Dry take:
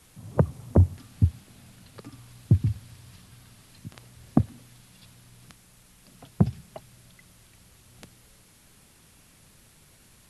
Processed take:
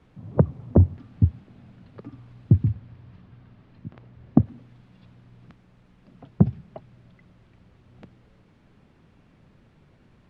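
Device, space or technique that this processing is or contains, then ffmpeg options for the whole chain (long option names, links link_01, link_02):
phone in a pocket: -filter_complex "[0:a]asettb=1/sr,asplit=3[link_01][link_02][link_03];[link_01]atrim=end=2.724[link_04];[link_02]atrim=start=2.72:end=4.46,asetpts=PTS-STARTPTS,afade=type=in:duration=0.004:curve=qsin,afade=type=out:start_time=1.736:duration=0.004:curve=qsin,highshelf=frequency=5700:gain=-10.5[link_05];[link_03]atrim=start=4.456[link_06];[link_04][link_05]acrossfade=duration=0.004:curve1=hsin:curve2=qsin[link_07];[link_07][link_06]acrossfade=duration=0.004:curve1=qsin:curve2=hsin,lowpass=3200,equalizer=frequency=240:width_type=o:width=2.8:gain=5.5,highshelf=frequency=2400:gain=-9,volume=-1dB"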